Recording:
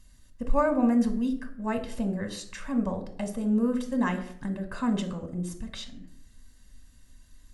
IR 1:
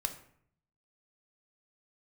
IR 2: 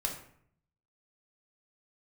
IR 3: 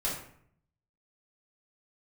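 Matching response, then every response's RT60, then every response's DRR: 1; 0.65 s, 0.65 s, 0.65 s; 6.5 dB, 1.0 dB, -6.5 dB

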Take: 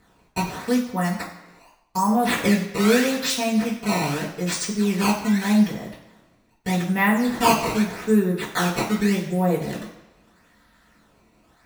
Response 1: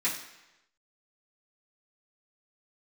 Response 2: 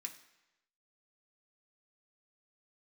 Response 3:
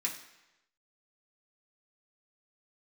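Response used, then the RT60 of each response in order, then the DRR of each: 1; 1.0 s, 1.0 s, 1.0 s; -10.5 dB, 2.5 dB, -3.0 dB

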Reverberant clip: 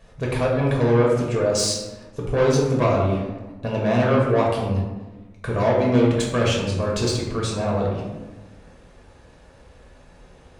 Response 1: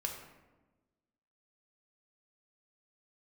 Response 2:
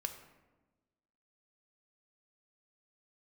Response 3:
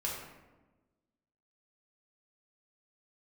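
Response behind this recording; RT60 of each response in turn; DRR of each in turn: 3; 1.2 s, 1.2 s, 1.2 s; 1.5 dB, 6.5 dB, -4.0 dB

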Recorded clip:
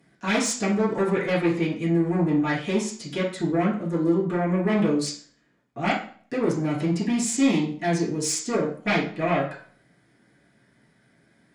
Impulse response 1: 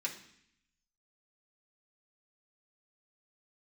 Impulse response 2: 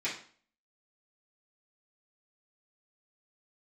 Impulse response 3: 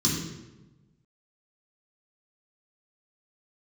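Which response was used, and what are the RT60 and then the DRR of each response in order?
2; 0.65 s, 0.45 s, 1.1 s; -3.5 dB, -10.5 dB, -5.5 dB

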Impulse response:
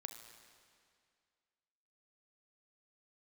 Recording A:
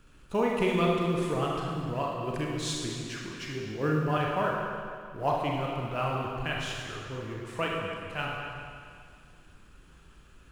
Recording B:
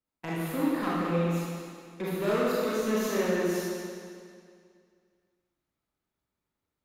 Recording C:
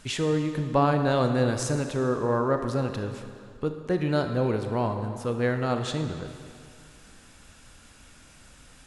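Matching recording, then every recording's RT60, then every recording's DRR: C; 2.2 s, 2.2 s, 2.2 s; -2.5 dB, -8.0 dB, 6.0 dB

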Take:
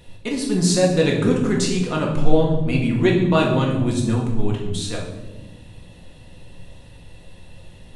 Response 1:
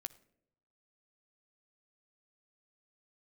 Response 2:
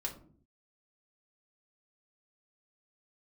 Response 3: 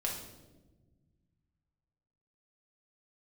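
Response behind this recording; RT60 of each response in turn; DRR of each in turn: 3; 0.75 s, 0.50 s, 1.2 s; 11.5 dB, -1.5 dB, -2.0 dB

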